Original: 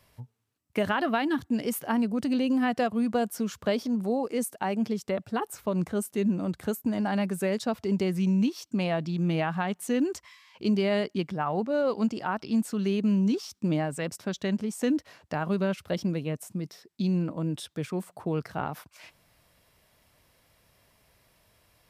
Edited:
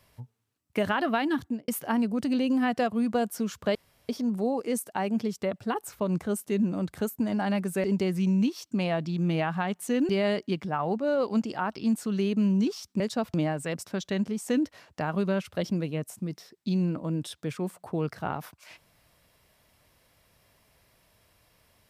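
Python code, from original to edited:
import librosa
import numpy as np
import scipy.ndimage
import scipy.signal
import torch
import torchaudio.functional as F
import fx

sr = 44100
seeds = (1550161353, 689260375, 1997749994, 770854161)

y = fx.studio_fade_out(x, sr, start_s=1.43, length_s=0.25)
y = fx.edit(y, sr, fx.insert_room_tone(at_s=3.75, length_s=0.34),
    fx.move(start_s=7.5, length_s=0.34, to_s=13.67),
    fx.cut(start_s=10.09, length_s=0.67), tone=tone)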